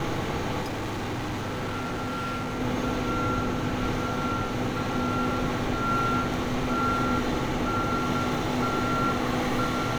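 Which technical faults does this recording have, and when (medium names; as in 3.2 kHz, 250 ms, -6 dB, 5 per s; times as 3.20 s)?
0.61–2.61 s: clipped -28 dBFS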